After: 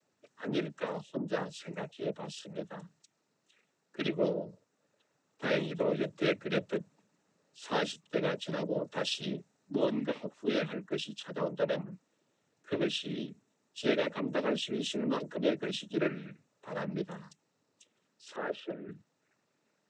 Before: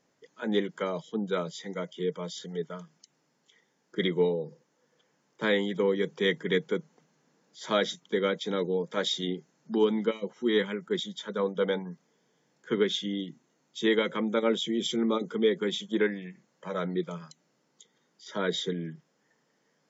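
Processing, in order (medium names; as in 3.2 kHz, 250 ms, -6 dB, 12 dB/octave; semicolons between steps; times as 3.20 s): noise-vocoded speech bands 12; 18.36–18.89 s: three-band isolator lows -18 dB, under 250 Hz, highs -23 dB, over 2.3 kHz; trim -4.5 dB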